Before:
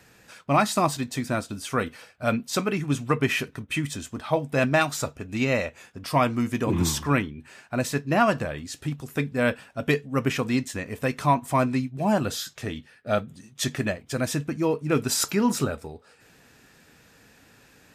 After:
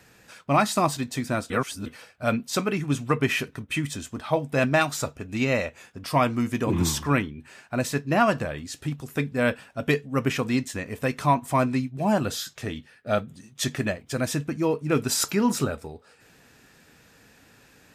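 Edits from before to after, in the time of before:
1.50–1.86 s: reverse

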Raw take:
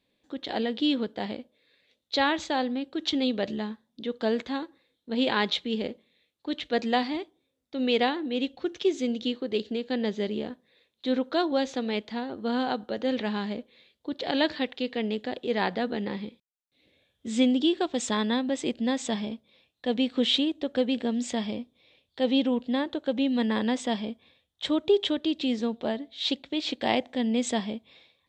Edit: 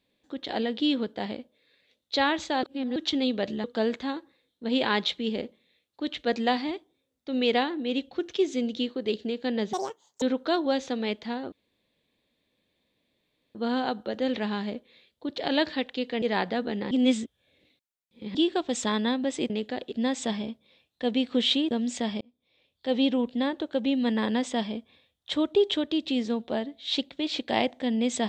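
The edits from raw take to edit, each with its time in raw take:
2.63–2.96 s: reverse
3.64–4.10 s: delete
10.19–11.08 s: speed 182%
12.38 s: insert room tone 2.03 s
15.05–15.47 s: move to 18.75 s
16.16–17.60 s: reverse
20.54–21.04 s: delete
21.54–22.33 s: fade in linear

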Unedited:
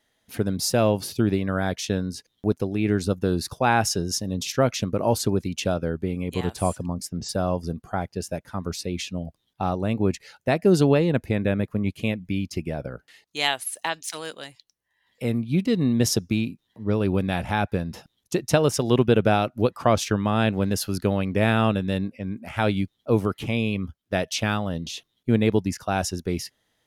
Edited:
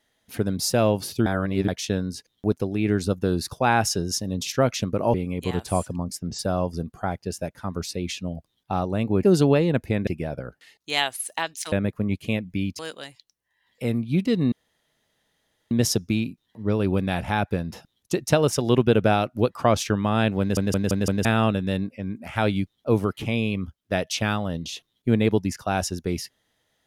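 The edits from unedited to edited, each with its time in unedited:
1.26–1.68 s: reverse
5.14–6.04 s: delete
10.13–10.63 s: delete
11.47–12.54 s: move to 14.19 s
15.92 s: insert room tone 1.19 s
20.61 s: stutter in place 0.17 s, 5 plays

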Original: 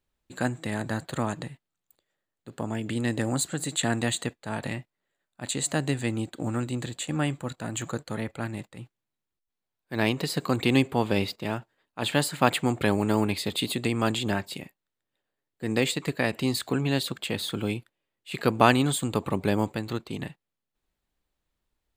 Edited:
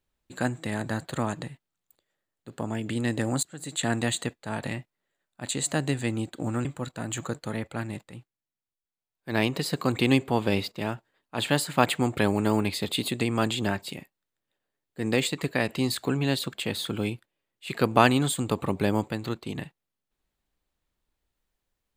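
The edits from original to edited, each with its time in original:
3.43–3.91 s: fade in, from -24 dB
6.65–7.29 s: delete
8.73–9.96 s: dip -8 dB, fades 0.24 s

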